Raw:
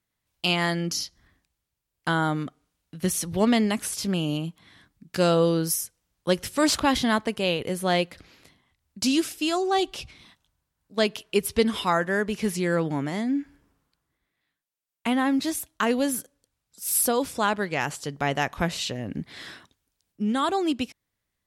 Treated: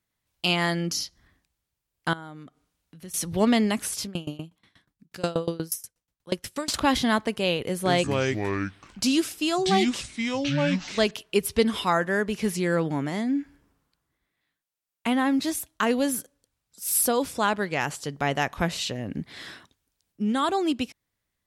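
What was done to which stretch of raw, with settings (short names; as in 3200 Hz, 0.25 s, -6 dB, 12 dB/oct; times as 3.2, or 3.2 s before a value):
2.13–3.14 compressor 2:1, threshold -52 dBFS
4.03–6.74 dB-ramp tremolo decaying 8.3 Hz, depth 24 dB
7.67–11.11 echoes that change speed 0.183 s, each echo -5 st, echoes 2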